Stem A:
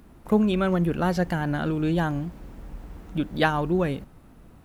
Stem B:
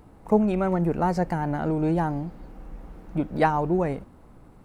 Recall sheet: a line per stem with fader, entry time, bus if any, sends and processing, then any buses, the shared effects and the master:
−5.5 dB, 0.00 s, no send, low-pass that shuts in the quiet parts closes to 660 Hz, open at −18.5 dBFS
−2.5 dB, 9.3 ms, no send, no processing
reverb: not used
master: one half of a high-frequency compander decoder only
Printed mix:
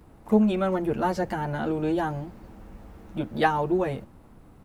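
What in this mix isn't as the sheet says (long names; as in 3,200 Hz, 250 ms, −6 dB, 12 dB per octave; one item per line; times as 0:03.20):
stem A: missing low-pass that shuts in the quiet parts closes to 660 Hz, open at −18.5 dBFS
master: missing one half of a high-frequency compander decoder only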